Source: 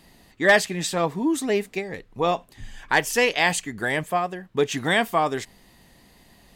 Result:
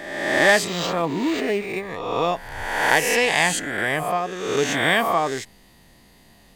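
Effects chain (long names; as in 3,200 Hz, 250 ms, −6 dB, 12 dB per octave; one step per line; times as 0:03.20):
peak hold with a rise ahead of every peak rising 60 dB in 1.21 s
0:00.67–0:01.89: linearly interpolated sample-rate reduction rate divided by 4×
level −1.5 dB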